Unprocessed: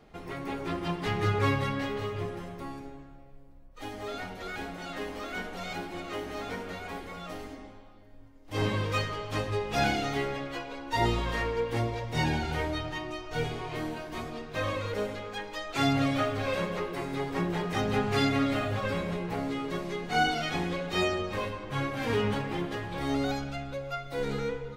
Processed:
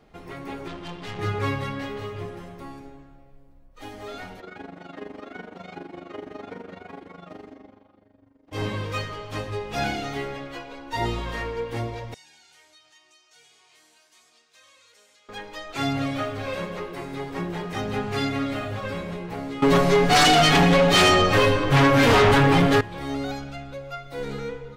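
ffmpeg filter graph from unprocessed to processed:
-filter_complex "[0:a]asettb=1/sr,asplit=3[s0][s1][s2];[s0]atrim=end=0.684[s3];[s1]atrim=start=0.68:end=1.19,asetpts=PTS-STARTPTS,afade=t=in:d=0.004:c=qsin,afade=t=out:st=0.506:d=0.004:c=qsin,lowpass=7300,equalizer=f=3300:w=2.2:g=5.5,aeval=exprs='(tanh(39.8*val(0)+0.55)-tanh(0.55))/39.8':c=same[s4];[s2]atrim=start=1.186[s5];[s3][s4]acrossfade=d=0.004:c1=hsin:c2=qsin[s6];[s6][s5]acrossfade=d=0.004:c1=qsin:c2=hsin,asettb=1/sr,asplit=3[s7][s8][s9];[s7]atrim=end=4.404[s10];[s8]atrim=start=4.4:end=8.53,asetpts=PTS-STARTPTS,afade=t=in:d=0.004:c=qsin,afade=t=out:st=4.126:d=0.004:c=qsin,highpass=250,aemphasis=mode=reproduction:type=riaa,tremolo=f=24:d=0.788[s11];[s9]atrim=start=8.526[s12];[s10][s11]acrossfade=d=0.004:c1=hsin:c2=qsin[s13];[s13][s12]acrossfade=d=0.004:c1=qsin:c2=hsin,asettb=1/sr,asplit=3[s14][s15][s16];[s14]atrim=end=12.144[s17];[s15]atrim=start=12.14:end=15.29,asetpts=PTS-STARTPTS,afade=t=in:d=0.004:c=qsin,afade=t=out:st=3.146:d=0.004:c=qsin,bandpass=f=7500:t=q:w=1.5,acompressor=threshold=0.00178:ratio=2:attack=3.2:release=140:knee=1:detection=peak[s18];[s16]atrim=start=15.286[s19];[s17][s18]acrossfade=d=0.004:c1=hsin:c2=qsin[s20];[s20][s19]acrossfade=d=0.004:c1=qsin:c2=hsin,asettb=1/sr,asplit=3[s21][s22][s23];[s21]atrim=end=19.624[s24];[s22]atrim=start=19.62:end=22.81,asetpts=PTS-STARTPTS,afade=t=in:d=0.004:c=qsin,afade=t=out:st=3.186:d=0.004:c=qsin,aecho=1:1:7.1:0.8,atrim=end_sample=140679,aeval=exprs='0.237*sin(PI/2*3.98*val(0)/0.237)':c=same[s25];[s23]atrim=start=22.806[s26];[s24][s25]acrossfade=d=0.004:c1=hsin:c2=qsin[s27];[s27][s26]acrossfade=d=0.004:c1=qsin:c2=hsin"

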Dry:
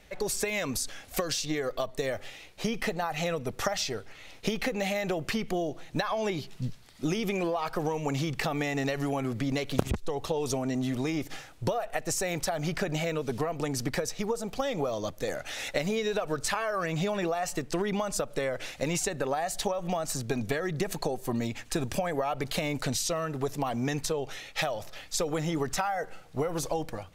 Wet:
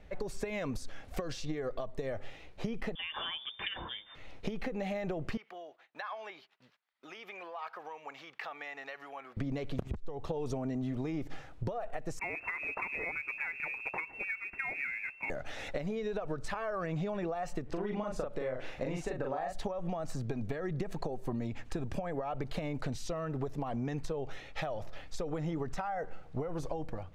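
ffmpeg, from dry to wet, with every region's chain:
-filter_complex "[0:a]asettb=1/sr,asplit=3[s0][s1][s2];[s0]atrim=end=2.954[s3];[s1]atrim=start=2.95:end=4.15,asetpts=PTS-STARTPTS,afade=t=in:d=0.004:c=qsin,afade=t=out:st=1.196:d=0.004:c=qsin,lowpass=f=3100:t=q:w=0.5098,lowpass=f=3100:t=q:w=0.6013,lowpass=f=3100:t=q:w=0.9,lowpass=f=3100:t=q:w=2.563,afreqshift=-3600,bandreject=f=103.1:t=h:w=4,bandreject=f=206.2:t=h:w=4,bandreject=f=309.3:t=h:w=4,bandreject=f=412.4:t=h:w=4,bandreject=f=515.5:t=h:w=4,bandreject=f=618.6:t=h:w=4,bandreject=f=721.7:t=h:w=4,bandreject=f=824.8:t=h:w=4,bandreject=f=927.9:t=h:w=4[s4];[s2]atrim=start=4.146[s5];[s3][s4]acrossfade=d=0.004:c1=hsin:c2=qsin[s6];[s6][s5]acrossfade=d=0.004:c1=qsin:c2=hsin,asettb=1/sr,asplit=3[s7][s8][s9];[s7]atrim=end=5.374[s10];[s8]atrim=start=5.37:end=9.37,asetpts=PTS-STARTPTS,afade=t=in:d=0.004:c=qsin,afade=t=out:st=3.996:d=0.004:c=qsin,agate=range=0.126:threshold=0.00708:ratio=16:release=100:detection=peak,highpass=1300,equalizer=f=8300:w=0.63:g=-12.5[s11];[s9]atrim=start=9.366[s12];[s10][s11]acrossfade=d=0.004:c1=hsin:c2=qsin[s13];[s13][s12]acrossfade=d=0.004:c1=qsin:c2=hsin,asettb=1/sr,asplit=3[s14][s15][s16];[s14]atrim=end=12.194[s17];[s15]atrim=start=12.19:end=15.3,asetpts=PTS-STARTPTS,afade=t=in:d=0.004:c=qsin,afade=t=out:st=3.106:d=0.004:c=qsin,lowpass=f=2300:t=q:w=0.5098,lowpass=f=2300:t=q:w=0.6013,lowpass=f=2300:t=q:w=0.9,lowpass=f=2300:t=q:w=2.563,afreqshift=-2700,acrusher=bits=6:mode=log:mix=0:aa=0.000001[s18];[s16]atrim=start=15.296[s19];[s17][s18]acrossfade=d=0.004:c1=hsin:c2=qsin[s20];[s20][s19]acrossfade=d=0.004:c1=qsin:c2=hsin,asettb=1/sr,asplit=3[s21][s22][s23];[s21]atrim=end=17.664[s24];[s22]atrim=start=17.66:end=19.53,asetpts=PTS-STARTPTS,afade=t=in:d=0.004:c=qsin,afade=t=out:st=1.866:d=0.004:c=qsin,bass=f=250:g=-4,treble=f=4000:g=-5,acompressor=mode=upward:threshold=0.0112:ratio=2.5:attack=3.2:release=140:knee=2.83:detection=peak,asplit=2[s25][s26];[s26]adelay=39,volume=0.708[s27];[s25][s27]amix=inputs=2:normalize=0,atrim=end_sample=82467[s28];[s23]atrim=start=19.526[s29];[s24][s28]acrossfade=d=0.004:c1=hsin:c2=qsin[s30];[s30][s29]acrossfade=d=0.004:c1=qsin:c2=hsin,lowpass=f=1200:p=1,lowshelf=f=81:g=7,acompressor=threshold=0.0251:ratio=6"

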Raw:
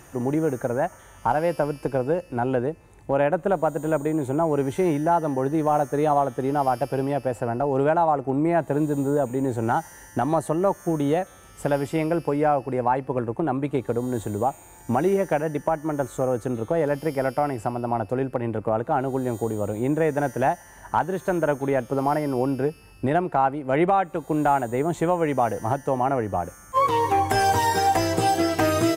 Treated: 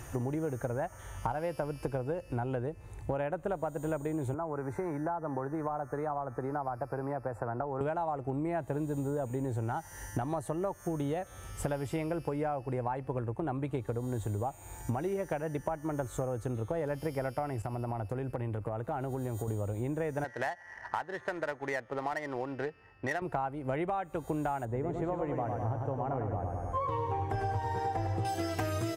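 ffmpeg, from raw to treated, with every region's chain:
-filter_complex "[0:a]asettb=1/sr,asplit=3[s0][s1][s2];[s0]atrim=end=4.344[s3];[s1]atrim=start=4.34:end=7.81,asetpts=PTS-STARTPTS,afade=t=in:d=0.004:c=qsin,afade=t=out:st=3.466:d=0.004:c=qsin,acrossover=split=170|1000[s4][s5][s6];[s4]acompressor=threshold=0.00447:ratio=4[s7];[s5]acompressor=threshold=0.0282:ratio=4[s8];[s6]acompressor=threshold=0.0178:ratio=4[s9];[s7][s8][s9]amix=inputs=3:normalize=0,asuperstop=centerf=3100:order=4:qfactor=2.3,highshelf=f=2000:t=q:w=1.5:g=-14[s10];[s2]atrim=start=7.806[s11];[s3][s10]acrossfade=d=0.004:c1=hsin:c2=qsin[s12];[s12][s11]acrossfade=d=0.004:c1=qsin:c2=hsin,asettb=1/sr,asplit=3[s13][s14][s15];[s13]atrim=end=17.624[s16];[s14]atrim=start=17.62:end=19.48,asetpts=PTS-STARTPTS,afade=t=in:d=0.004:c=qsin,afade=t=out:st=1.856:d=0.004:c=qsin,highshelf=f=11000:g=6,acompressor=threshold=0.0282:ratio=2.5:attack=3.2:release=140:knee=1:detection=peak,agate=range=0.0224:threshold=0.01:ratio=3:release=100:detection=peak[s17];[s15]atrim=start=19.476[s18];[s16][s17]acrossfade=d=0.004:c1=hsin:c2=qsin[s19];[s19][s18]acrossfade=d=0.004:c1=qsin:c2=hsin,asettb=1/sr,asplit=3[s20][s21][s22];[s20]atrim=end=20.244[s23];[s21]atrim=start=20.24:end=23.22,asetpts=PTS-STARTPTS,afade=t=in:d=0.004:c=qsin,afade=t=out:st=2.976:d=0.004:c=qsin,highpass=f=840:p=1,equalizer=f=1900:w=6.3:g=14,adynamicsmooth=sensitivity=5:basefreq=1500[s24];[s22]atrim=start=23.216[s25];[s23][s24]acrossfade=d=0.004:c1=hsin:c2=qsin[s26];[s26][s25]acrossfade=d=0.004:c1=qsin:c2=hsin,asettb=1/sr,asplit=3[s27][s28][s29];[s27]atrim=end=24.654[s30];[s28]atrim=start=24.65:end=28.25,asetpts=PTS-STARTPTS,afade=t=in:d=0.004:c=qsin,afade=t=out:st=3.596:d=0.004:c=qsin,lowpass=f=1000:p=1,aecho=1:1:101|202|303|404|505|606|707|808:0.562|0.326|0.189|0.11|0.0636|0.0369|0.0214|0.0124,atrim=end_sample=158760[s31];[s29]atrim=start=28.246[s32];[s30][s31]acrossfade=d=0.004:c1=hsin:c2=qsin[s33];[s33][s32]acrossfade=d=0.004:c1=qsin:c2=hsin,lowshelf=f=140:t=q:w=1.5:g=7,acompressor=threshold=0.0282:ratio=6"

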